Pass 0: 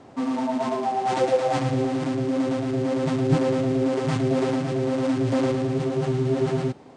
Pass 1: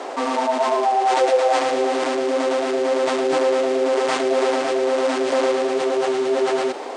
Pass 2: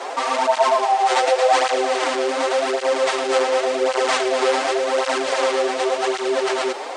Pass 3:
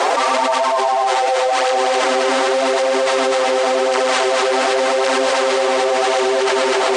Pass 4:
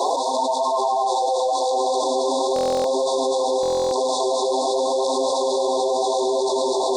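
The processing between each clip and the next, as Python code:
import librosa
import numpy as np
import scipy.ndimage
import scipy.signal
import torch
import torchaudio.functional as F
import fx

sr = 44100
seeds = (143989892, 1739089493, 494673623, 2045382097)

y1 = scipy.signal.sosfilt(scipy.signal.butter(4, 400.0, 'highpass', fs=sr, output='sos'), x)
y1 = fx.env_flatten(y1, sr, amount_pct=50)
y1 = F.gain(torch.from_numpy(y1), 3.0).numpy()
y2 = fx.peak_eq(y1, sr, hz=190.0, db=-15.0, octaves=2.0)
y2 = fx.flanger_cancel(y2, sr, hz=0.89, depth_ms=6.9)
y2 = F.gain(torch.from_numpy(y2), 7.5).numpy()
y3 = y2 + 10.0 ** (-3.5 / 20.0) * np.pad(y2, (int(249 * sr / 1000.0), 0))[:len(y2)]
y3 = fx.env_flatten(y3, sr, amount_pct=100)
y3 = F.gain(torch.from_numpy(y3), -4.0).numpy()
y4 = fx.brickwall_bandstop(y3, sr, low_hz=1100.0, high_hz=3400.0)
y4 = fx.buffer_glitch(y4, sr, at_s=(2.54, 3.61), block=1024, repeats=12)
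y4 = F.gain(torch.from_numpy(y4), -4.0).numpy()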